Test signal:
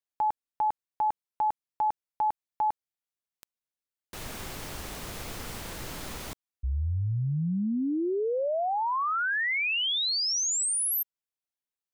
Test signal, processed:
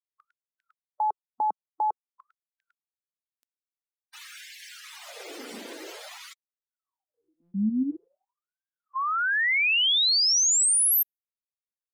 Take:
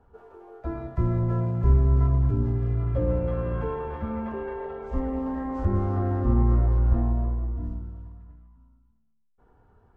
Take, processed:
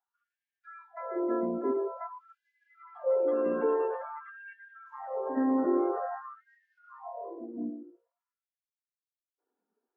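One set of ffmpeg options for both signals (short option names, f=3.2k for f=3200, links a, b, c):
-af "equalizer=f=1k:t=o:w=1.5:g=-6,afftdn=nr=26:nf=-45,afftfilt=real='re*gte(b*sr/1024,210*pow(1600/210,0.5+0.5*sin(2*PI*0.49*pts/sr)))':imag='im*gte(b*sr/1024,210*pow(1600/210,0.5+0.5*sin(2*PI*0.49*pts/sr)))':win_size=1024:overlap=0.75,volume=6.5dB"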